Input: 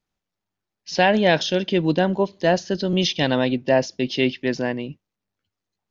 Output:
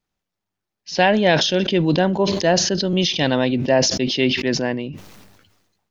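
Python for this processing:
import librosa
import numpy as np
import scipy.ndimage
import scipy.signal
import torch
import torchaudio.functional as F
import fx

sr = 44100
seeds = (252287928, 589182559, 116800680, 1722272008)

y = fx.sustainer(x, sr, db_per_s=46.0)
y = y * 10.0 ** (1.0 / 20.0)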